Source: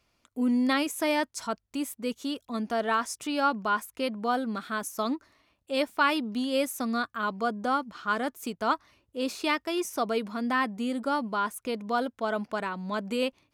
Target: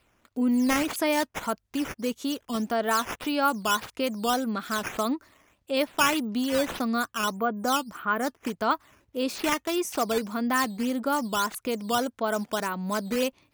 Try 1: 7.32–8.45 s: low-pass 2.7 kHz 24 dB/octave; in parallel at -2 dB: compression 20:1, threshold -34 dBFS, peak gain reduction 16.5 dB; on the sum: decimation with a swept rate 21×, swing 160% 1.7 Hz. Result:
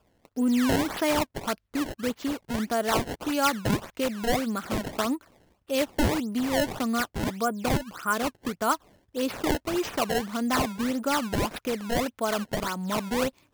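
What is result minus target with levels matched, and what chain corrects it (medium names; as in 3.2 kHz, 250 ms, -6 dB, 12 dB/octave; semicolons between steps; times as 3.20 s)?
decimation with a swept rate: distortion +9 dB
7.32–8.45 s: low-pass 2.7 kHz 24 dB/octave; in parallel at -2 dB: compression 20:1, threshold -34 dBFS, peak gain reduction 16.5 dB; on the sum: decimation with a swept rate 6×, swing 160% 1.7 Hz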